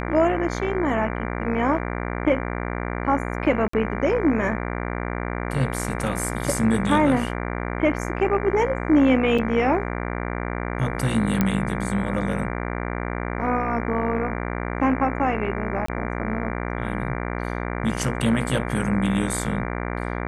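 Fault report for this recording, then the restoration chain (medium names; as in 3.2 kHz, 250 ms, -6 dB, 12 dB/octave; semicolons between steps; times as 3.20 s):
buzz 60 Hz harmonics 39 -28 dBFS
3.68–3.73 s: dropout 54 ms
9.38–9.39 s: dropout 5.6 ms
11.41 s: pop -7 dBFS
15.86–15.88 s: dropout 24 ms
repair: de-click; de-hum 60 Hz, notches 39; interpolate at 3.68 s, 54 ms; interpolate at 9.38 s, 5.6 ms; interpolate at 15.86 s, 24 ms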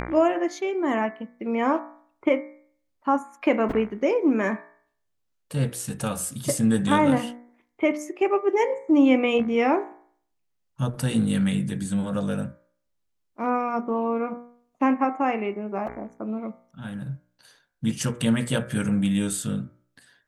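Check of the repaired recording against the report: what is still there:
nothing left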